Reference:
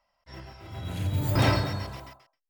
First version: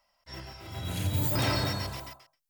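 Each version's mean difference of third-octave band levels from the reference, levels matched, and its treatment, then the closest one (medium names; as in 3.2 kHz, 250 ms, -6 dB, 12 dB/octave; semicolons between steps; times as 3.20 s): 5.0 dB: treble shelf 3.8 kHz +10 dB; hum notches 50/100/150 Hz; peak limiter -18.5 dBFS, peak gain reduction 7.5 dB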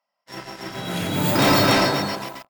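8.0 dB: high-pass 170 Hz 24 dB/octave; waveshaping leveller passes 3; loudspeakers at several distances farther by 10 m -7 dB, 53 m -6 dB, 99 m 0 dB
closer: first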